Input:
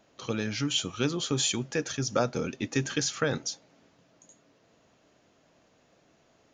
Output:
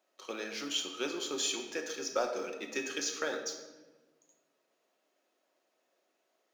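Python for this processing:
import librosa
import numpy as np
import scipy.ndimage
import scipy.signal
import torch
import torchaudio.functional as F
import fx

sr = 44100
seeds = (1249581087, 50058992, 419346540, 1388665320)

p1 = fx.law_mismatch(x, sr, coded='A')
p2 = scipy.signal.sosfilt(scipy.signal.butter(4, 320.0, 'highpass', fs=sr, output='sos'), p1)
p3 = fx.comb_fb(p2, sr, f0_hz=640.0, decay_s=0.43, harmonics='all', damping=0.0, mix_pct=70)
p4 = np.clip(10.0 ** (30.5 / 20.0) * p3, -1.0, 1.0) / 10.0 ** (30.5 / 20.0)
p5 = p3 + (p4 * 10.0 ** (-12.0 / 20.0))
p6 = fx.room_shoebox(p5, sr, seeds[0], volume_m3=790.0, walls='mixed', distance_m=1.0)
y = p6 * 10.0 ** (3.0 / 20.0)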